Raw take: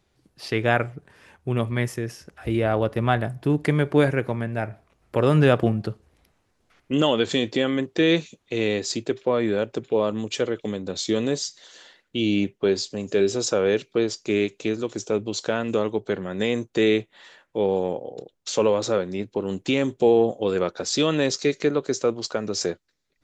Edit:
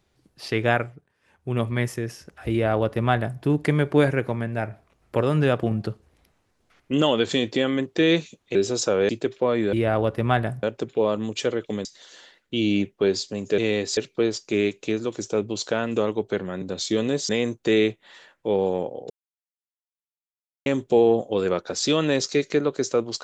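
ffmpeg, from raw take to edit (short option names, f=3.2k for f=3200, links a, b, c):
-filter_complex "[0:a]asplit=16[a][b][c][d][e][f][g][h][i][j][k][l][m][n][o][p];[a]atrim=end=1.09,asetpts=PTS-STARTPTS,afade=t=out:st=0.7:d=0.39:silence=0.125893[q];[b]atrim=start=1.09:end=1.21,asetpts=PTS-STARTPTS,volume=-18dB[r];[c]atrim=start=1.21:end=5.222,asetpts=PTS-STARTPTS,afade=t=in:d=0.39:silence=0.125893[s];[d]atrim=start=5.218:end=5.712,asetpts=PTS-STARTPTS,volume=-3.5dB[t];[e]atrim=start=5.708:end=8.552[u];[f]atrim=start=13.198:end=13.742[v];[g]atrim=start=8.938:end=9.582[w];[h]atrim=start=2.508:end=3.412[x];[i]atrim=start=9.578:end=10.802[y];[j]atrim=start=11.468:end=13.202[z];[k]atrim=start=8.548:end=8.942[aa];[l]atrim=start=13.738:end=16.392[ab];[m]atrim=start=10.798:end=11.472[ac];[n]atrim=start=16.388:end=18.2,asetpts=PTS-STARTPTS,afade=t=out:st=1.808:d=0.004:c=hsin[ad];[o]atrim=start=18.2:end=19.76,asetpts=PTS-STARTPTS,volume=0[ae];[p]atrim=start=19.76,asetpts=PTS-STARTPTS,afade=t=in:d=0.004:c=hsin[af];[q][r][s]concat=n=3:v=0:a=1[ag];[ag][t]acrossfade=d=0.004:c1=hsin:c2=hsin[ah];[ah][u]acrossfade=d=0.004:c1=hsin:c2=hsin[ai];[ai][v]acrossfade=d=0.004:c1=hsin:c2=hsin[aj];[aj][w]acrossfade=d=0.004:c1=hsin:c2=hsin[ak];[ak][x]acrossfade=d=0.004:c1=hsin:c2=hsin[al];[al][y]acrossfade=d=0.004:c1=hsin:c2=hsin[am];[am][z]acrossfade=d=0.004:c1=hsin:c2=hsin[an];[an][aa]acrossfade=d=0.004:c1=hsin:c2=hsin[ao];[ao][ab]acrossfade=d=0.004:c1=hsin:c2=hsin[ap];[ap][ac]acrossfade=d=0.004:c1=hsin:c2=hsin[aq];[ad][ae][af]concat=n=3:v=0:a=1[ar];[aq][ar]acrossfade=d=0.004:c1=hsin:c2=hsin"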